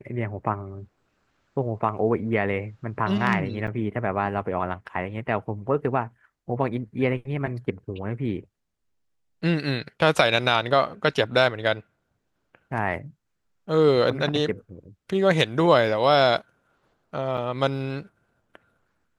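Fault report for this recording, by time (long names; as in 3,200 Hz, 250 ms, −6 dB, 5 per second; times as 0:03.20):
0:03.67–0:03.68: drop-out 6.7 ms
0:17.37–0:17.38: drop-out 6 ms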